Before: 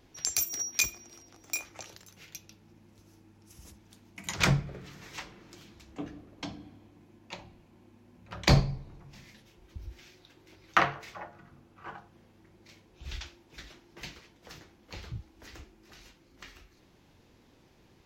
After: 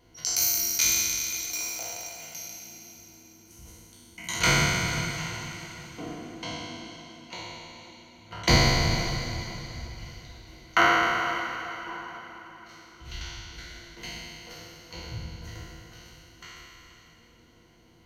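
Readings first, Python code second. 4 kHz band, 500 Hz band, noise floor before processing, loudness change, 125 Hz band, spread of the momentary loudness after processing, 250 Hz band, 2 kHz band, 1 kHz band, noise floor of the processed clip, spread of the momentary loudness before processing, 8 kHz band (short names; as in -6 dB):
+8.5 dB, +6.5 dB, -62 dBFS, +5.0 dB, +2.0 dB, 22 LU, +4.0 dB, +8.0 dB, +7.0 dB, -56 dBFS, 24 LU, +8.5 dB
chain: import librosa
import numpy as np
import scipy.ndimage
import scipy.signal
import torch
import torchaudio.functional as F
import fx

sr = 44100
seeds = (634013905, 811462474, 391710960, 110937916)

y = fx.spec_trails(x, sr, decay_s=2.45)
y = fx.ripple_eq(y, sr, per_octave=1.9, db=11)
y = fx.echo_diffused(y, sr, ms=468, feedback_pct=45, wet_db=-13.0)
y = F.gain(torch.from_numpy(y), -2.5).numpy()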